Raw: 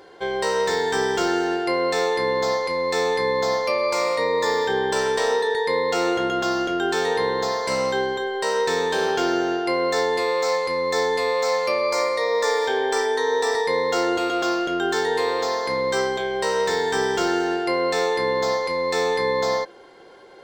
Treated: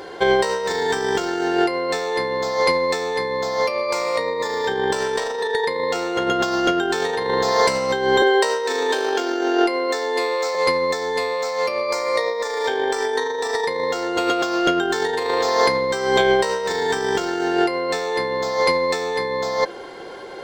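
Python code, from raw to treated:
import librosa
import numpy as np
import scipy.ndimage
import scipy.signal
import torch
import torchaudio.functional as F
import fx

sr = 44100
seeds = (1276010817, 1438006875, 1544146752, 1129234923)

y = fx.cheby1_highpass(x, sr, hz=230.0, order=5, at=(8.22, 10.55))
y = fx.over_compress(y, sr, threshold_db=-26.0, ratio=-0.5)
y = y * 10.0 ** (6.5 / 20.0)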